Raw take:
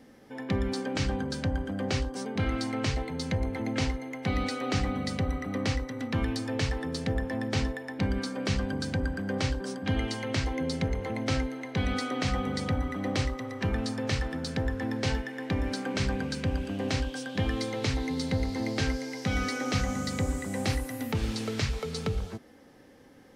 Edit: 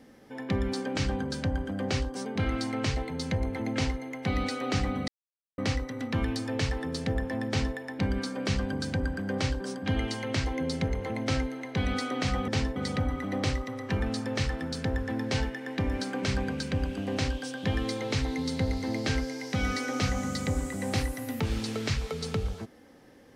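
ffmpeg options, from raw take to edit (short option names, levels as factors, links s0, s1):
-filter_complex "[0:a]asplit=5[s0][s1][s2][s3][s4];[s0]atrim=end=5.08,asetpts=PTS-STARTPTS,afade=t=out:st=5.076:d=0.004:c=hsin[s5];[s1]atrim=start=5.08:end=5.58,asetpts=PTS-STARTPTS,volume=0[s6];[s2]atrim=start=5.58:end=12.482,asetpts=PTS-STARTPTS,afade=t=in:d=0.004:c=hsin[s7];[s3]atrim=start=7.478:end=7.762[s8];[s4]atrim=start=12.478[s9];[s5][s6][s7]concat=n=3:v=0:a=1[s10];[s10][s8]acrossfade=d=0.004:c1=hsin:c2=hsin[s11];[s11][s9]acrossfade=d=0.004:c1=hsin:c2=hsin"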